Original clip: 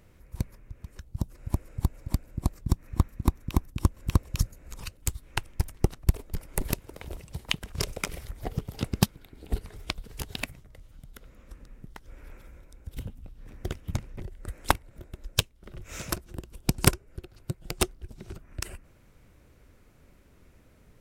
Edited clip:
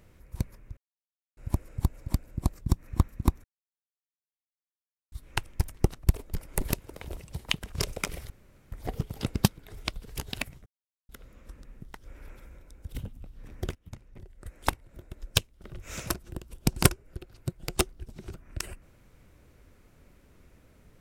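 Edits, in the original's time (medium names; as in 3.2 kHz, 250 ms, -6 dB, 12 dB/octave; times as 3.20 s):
0.77–1.37 s: mute
3.44–5.12 s: mute
8.30 s: insert room tone 0.42 s
9.25–9.69 s: delete
10.68–11.11 s: mute
13.77–15.37 s: fade in, from -19.5 dB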